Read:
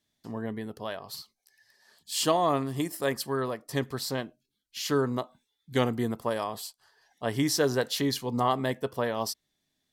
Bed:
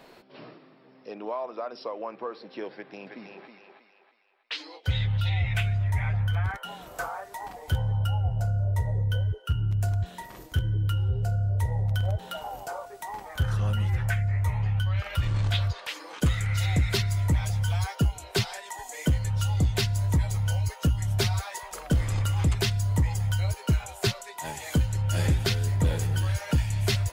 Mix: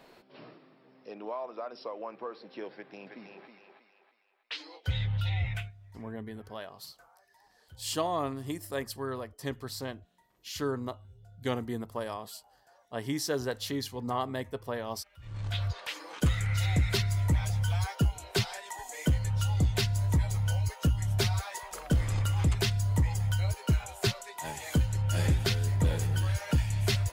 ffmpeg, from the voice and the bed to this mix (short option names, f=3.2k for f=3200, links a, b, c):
-filter_complex "[0:a]adelay=5700,volume=-6dB[a];[1:a]volume=20.5dB,afade=t=out:st=5.46:d=0.26:silence=0.0707946,afade=t=in:st=15.19:d=0.63:silence=0.0562341[b];[a][b]amix=inputs=2:normalize=0"